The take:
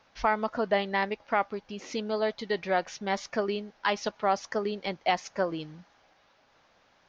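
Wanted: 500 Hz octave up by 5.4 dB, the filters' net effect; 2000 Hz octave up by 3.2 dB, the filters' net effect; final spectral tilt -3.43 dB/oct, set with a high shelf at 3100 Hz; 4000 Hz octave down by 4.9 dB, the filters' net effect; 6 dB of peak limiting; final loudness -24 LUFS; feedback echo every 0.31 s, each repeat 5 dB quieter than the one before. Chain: bell 500 Hz +7 dB; bell 2000 Hz +6 dB; high shelf 3100 Hz -4 dB; bell 4000 Hz -7 dB; limiter -14.5 dBFS; feedback echo 0.31 s, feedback 56%, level -5 dB; gain +3 dB

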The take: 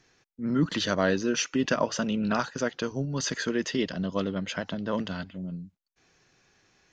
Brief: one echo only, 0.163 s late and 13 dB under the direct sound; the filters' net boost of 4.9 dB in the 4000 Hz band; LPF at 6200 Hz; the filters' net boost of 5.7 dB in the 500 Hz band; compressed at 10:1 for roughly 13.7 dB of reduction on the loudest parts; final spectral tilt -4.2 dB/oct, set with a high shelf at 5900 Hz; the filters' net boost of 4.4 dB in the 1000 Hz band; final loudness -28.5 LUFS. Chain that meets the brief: LPF 6200 Hz; bell 500 Hz +6 dB; bell 1000 Hz +3.5 dB; bell 4000 Hz +5 dB; high shelf 5900 Hz +5 dB; compressor 10:1, threshold -29 dBFS; echo 0.163 s -13 dB; gain +5.5 dB

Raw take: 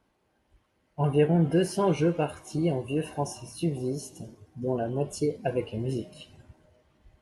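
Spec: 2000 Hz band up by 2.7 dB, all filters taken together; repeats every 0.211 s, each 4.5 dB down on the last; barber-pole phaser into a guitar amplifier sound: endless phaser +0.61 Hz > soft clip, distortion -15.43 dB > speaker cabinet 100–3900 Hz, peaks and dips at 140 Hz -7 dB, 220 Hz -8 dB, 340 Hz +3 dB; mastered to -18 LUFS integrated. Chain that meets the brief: bell 2000 Hz +4 dB; feedback echo 0.211 s, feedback 60%, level -4.5 dB; endless phaser +0.61 Hz; soft clip -20.5 dBFS; speaker cabinet 100–3900 Hz, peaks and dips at 140 Hz -7 dB, 220 Hz -8 dB, 340 Hz +3 dB; gain +14.5 dB

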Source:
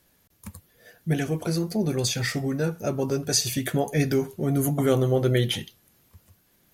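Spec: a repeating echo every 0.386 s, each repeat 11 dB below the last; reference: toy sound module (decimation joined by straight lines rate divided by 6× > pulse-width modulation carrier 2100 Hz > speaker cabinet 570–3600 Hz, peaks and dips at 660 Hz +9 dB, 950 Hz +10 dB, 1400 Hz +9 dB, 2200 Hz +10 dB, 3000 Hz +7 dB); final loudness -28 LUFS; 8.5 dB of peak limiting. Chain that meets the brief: limiter -18 dBFS; feedback echo 0.386 s, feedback 28%, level -11 dB; decimation joined by straight lines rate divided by 6×; pulse-width modulation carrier 2100 Hz; speaker cabinet 570–3600 Hz, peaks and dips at 660 Hz +9 dB, 950 Hz +10 dB, 1400 Hz +9 dB, 2200 Hz +10 dB, 3000 Hz +7 dB; gain -0.5 dB

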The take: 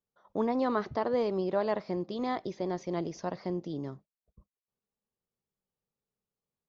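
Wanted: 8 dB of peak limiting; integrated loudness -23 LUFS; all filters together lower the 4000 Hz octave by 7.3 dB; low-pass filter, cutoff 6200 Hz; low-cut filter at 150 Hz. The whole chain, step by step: HPF 150 Hz; LPF 6200 Hz; bell 4000 Hz -8.5 dB; gain +12.5 dB; limiter -12 dBFS

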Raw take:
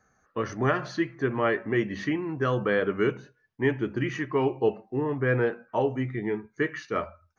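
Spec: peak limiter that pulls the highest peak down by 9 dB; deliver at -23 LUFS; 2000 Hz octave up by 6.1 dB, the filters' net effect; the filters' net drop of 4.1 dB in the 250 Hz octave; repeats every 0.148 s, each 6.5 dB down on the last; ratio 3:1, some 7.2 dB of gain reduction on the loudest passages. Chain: bell 250 Hz -6 dB; bell 2000 Hz +7.5 dB; compressor 3:1, threshold -28 dBFS; limiter -24 dBFS; feedback echo 0.148 s, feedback 47%, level -6.5 dB; gain +11 dB

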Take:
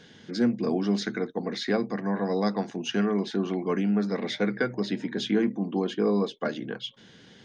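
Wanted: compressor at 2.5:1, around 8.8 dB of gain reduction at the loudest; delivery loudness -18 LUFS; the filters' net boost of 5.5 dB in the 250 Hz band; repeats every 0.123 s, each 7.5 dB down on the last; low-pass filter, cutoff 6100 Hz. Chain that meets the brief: LPF 6100 Hz; bell 250 Hz +7 dB; compressor 2.5:1, threshold -27 dBFS; feedback echo 0.123 s, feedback 42%, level -7.5 dB; gain +10.5 dB

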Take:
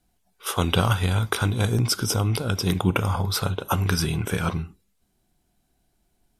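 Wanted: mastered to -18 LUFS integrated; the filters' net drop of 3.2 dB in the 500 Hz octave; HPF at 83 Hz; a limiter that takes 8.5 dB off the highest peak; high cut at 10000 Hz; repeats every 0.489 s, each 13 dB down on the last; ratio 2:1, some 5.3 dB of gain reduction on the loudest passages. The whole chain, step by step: HPF 83 Hz; LPF 10000 Hz; bell 500 Hz -4 dB; compressor 2:1, threshold -26 dBFS; limiter -17.5 dBFS; feedback echo 0.489 s, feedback 22%, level -13 dB; gain +12 dB

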